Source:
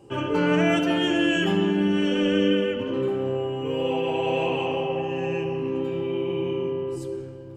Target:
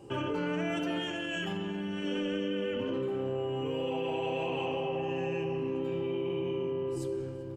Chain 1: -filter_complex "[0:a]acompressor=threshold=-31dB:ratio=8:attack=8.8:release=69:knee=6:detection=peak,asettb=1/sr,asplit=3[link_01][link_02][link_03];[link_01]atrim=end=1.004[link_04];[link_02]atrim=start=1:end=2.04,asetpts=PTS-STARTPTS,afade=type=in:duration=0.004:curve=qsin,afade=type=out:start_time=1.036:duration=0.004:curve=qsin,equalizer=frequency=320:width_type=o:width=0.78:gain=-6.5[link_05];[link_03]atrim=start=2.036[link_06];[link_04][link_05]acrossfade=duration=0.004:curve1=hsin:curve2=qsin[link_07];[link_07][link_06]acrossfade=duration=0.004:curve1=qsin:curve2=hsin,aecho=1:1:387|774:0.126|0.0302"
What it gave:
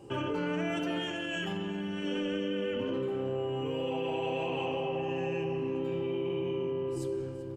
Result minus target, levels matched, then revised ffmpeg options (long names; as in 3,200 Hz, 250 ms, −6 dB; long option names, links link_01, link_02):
echo-to-direct +6.5 dB
-filter_complex "[0:a]acompressor=threshold=-31dB:ratio=8:attack=8.8:release=69:knee=6:detection=peak,asettb=1/sr,asplit=3[link_01][link_02][link_03];[link_01]atrim=end=1.004[link_04];[link_02]atrim=start=1:end=2.04,asetpts=PTS-STARTPTS,afade=type=in:duration=0.004:curve=qsin,afade=type=out:start_time=1.036:duration=0.004:curve=qsin,equalizer=frequency=320:width_type=o:width=0.78:gain=-6.5[link_05];[link_03]atrim=start=2.036[link_06];[link_04][link_05]acrossfade=duration=0.004:curve1=hsin:curve2=qsin[link_07];[link_07][link_06]acrossfade=duration=0.004:curve1=qsin:curve2=hsin,aecho=1:1:387|774:0.0596|0.0143"